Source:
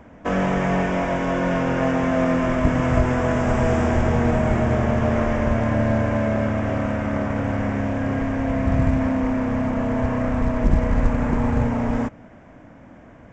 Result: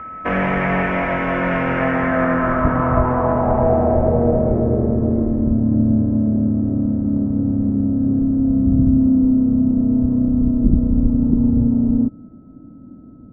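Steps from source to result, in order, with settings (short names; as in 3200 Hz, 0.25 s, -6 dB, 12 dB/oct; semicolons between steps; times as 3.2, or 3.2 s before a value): whine 1300 Hz -34 dBFS; low-pass sweep 2200 Hz -> 270 Hz, 1.77–5.61; gain +1 dB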